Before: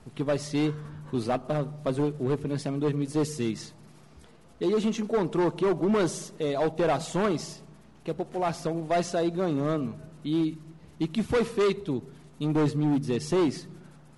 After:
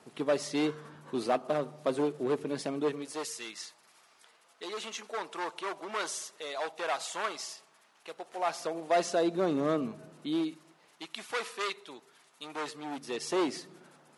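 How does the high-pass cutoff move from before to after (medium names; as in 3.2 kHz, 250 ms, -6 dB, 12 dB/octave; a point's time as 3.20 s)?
2.80 s 320 Hz
3.29 s 990 Hz
8.11 s 990 Hz
9.39 s 250 Hz
10.11 s 250 Hz
11.06 s 1 kHz
12.57 s 1 kHz
13.61 s 370 Hz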